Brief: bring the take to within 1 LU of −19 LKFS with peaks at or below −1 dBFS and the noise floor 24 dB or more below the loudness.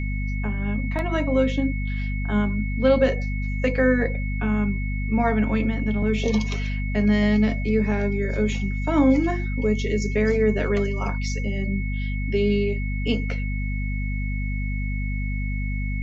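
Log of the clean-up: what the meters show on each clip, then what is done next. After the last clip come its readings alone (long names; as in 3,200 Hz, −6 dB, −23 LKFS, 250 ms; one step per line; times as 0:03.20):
mains hum 50 Hz; hum harmonics up to 250 Hz; level of the hum −24 dBFS; interfering tone 2,200 Hz; level of the tone −35 dBFS; integrated loudness −24.0 LKFS; sample peak −7.0 dBFS; target loudness −19.0 LKFS
→ mains-hum notches 50/100/150/200/250 Hz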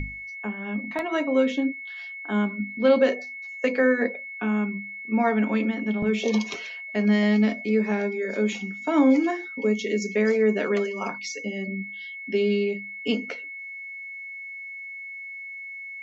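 mains hum none found; interfering tone 2,200 Hz; level of the tone −35 dBFS
→ notch filter 2,200 Hz, Q 30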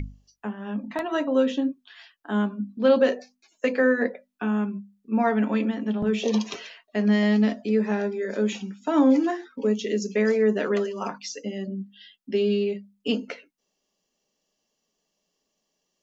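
interfering tone none found; integrated loudness −25.0 LKFS; sample peak −8.0 dBFS; target loudness −19.0 LKFS
→ level +6 dB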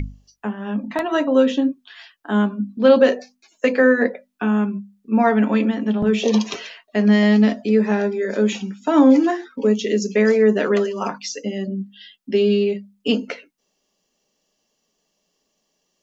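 integrated loudness −19.0 LKFS; sample peak −2.0 dBFS; background noise floor −72 dBFS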